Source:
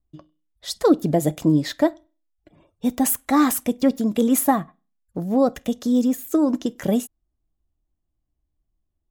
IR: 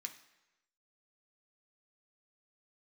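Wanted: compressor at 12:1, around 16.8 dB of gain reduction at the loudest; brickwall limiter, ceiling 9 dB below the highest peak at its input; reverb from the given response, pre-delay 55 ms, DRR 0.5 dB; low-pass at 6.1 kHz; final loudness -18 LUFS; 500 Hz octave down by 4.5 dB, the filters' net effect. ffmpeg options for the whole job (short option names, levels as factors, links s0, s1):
-filter_complex "[0:a]lowpass=6100,equalizer=f=500:t=o:g=-5.5,acompressor=threshold=0.0282:ratio=12,alimiter=level_in=1.5:limit=0.0631:level=0:latency=1,volume=0.668,asplit=2[s0][s1];[1:a]atrim=start_sample=2205,adelay=55[s2];[s1][s2]afir=irnorm=-1:irlink=0,volume=1.41[s3];[s0][s3]amix=inputs=2:normalize=0,volume=8.91"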